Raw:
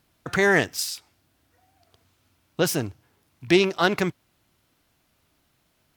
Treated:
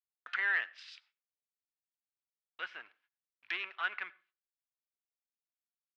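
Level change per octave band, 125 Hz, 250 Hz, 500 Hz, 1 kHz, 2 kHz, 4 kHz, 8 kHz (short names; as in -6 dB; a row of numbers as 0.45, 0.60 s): under -40 dB, under -40 dB, -34.0 dB, -14.5 dB, -8.5 dB, -16.5 dB, under -35 dB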